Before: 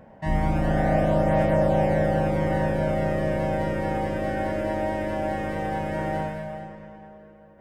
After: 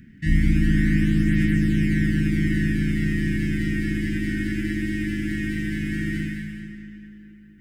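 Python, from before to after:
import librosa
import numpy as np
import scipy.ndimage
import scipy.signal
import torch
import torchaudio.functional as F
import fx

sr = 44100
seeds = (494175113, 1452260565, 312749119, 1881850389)

p1 = scipy.signal.sosfilt(scipy.signal.ellip(3, 1.0, 50, [300.0, 1800.0], 'bandstop', fs=sr, output='sos'), x)
p2 = p1 + fx.echo_single(p1, sr, ms=177, db=-11.0, dry=0)
y = p2 * 10.0 ** (6.0 / 20.0)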